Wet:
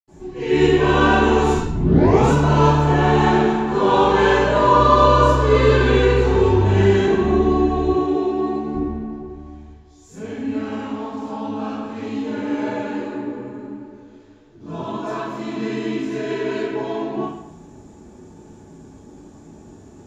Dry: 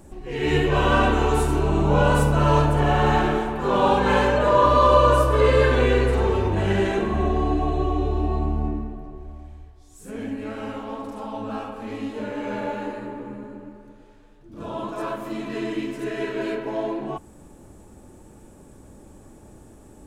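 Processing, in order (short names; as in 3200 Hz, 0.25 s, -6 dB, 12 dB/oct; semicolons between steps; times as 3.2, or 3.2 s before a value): 1.5 tape start 0.71 s; 7.85–8.67 HPF 240 Hz 12 dB/oct; reverb RT60 0.70 s, pre-delay 77 ms, DRR -60 dB; gain -8 dB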